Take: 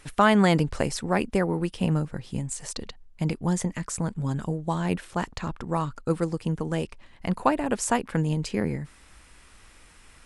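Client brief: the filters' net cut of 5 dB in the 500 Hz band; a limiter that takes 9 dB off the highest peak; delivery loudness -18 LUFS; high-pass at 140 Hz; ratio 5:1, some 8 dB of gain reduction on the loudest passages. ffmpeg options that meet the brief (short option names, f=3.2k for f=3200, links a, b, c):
-af "highpass=140,equalizer=f=500:t=o:g=-6.5,acompressor=threshold=-26dB:ratio=5,volume=16.5dB,alimiter=limit=-6.5dB:level=0:latency=1"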